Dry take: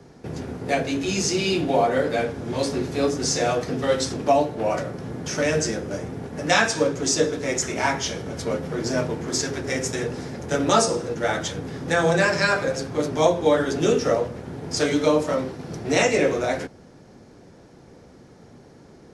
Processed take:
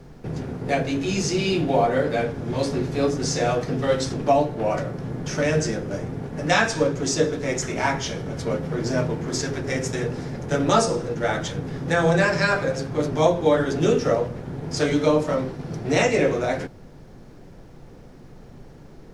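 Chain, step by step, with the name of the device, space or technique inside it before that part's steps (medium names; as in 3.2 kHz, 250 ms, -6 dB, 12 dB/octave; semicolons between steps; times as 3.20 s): car interior (peaking EQ 140 Hz +6 dB 0.57 oct; treble shelf 4.8 kHz -6 dB; brown noise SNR 23 dB)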